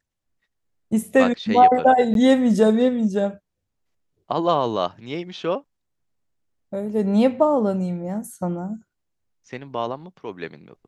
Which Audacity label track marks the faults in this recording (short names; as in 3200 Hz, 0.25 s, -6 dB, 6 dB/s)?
2.140000	2.150000	gap 12 ms